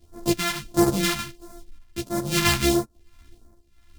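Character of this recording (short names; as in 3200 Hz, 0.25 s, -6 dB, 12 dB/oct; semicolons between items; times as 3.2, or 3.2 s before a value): a buzz of ramps at a fixed pitch in blocks of 128 samples; phasing stages 2, 1.5 Hz, lowest notch 420–2700 Hz; tremolo triangle 1.3 Hz, depth 80%; a shimmering, thickened sound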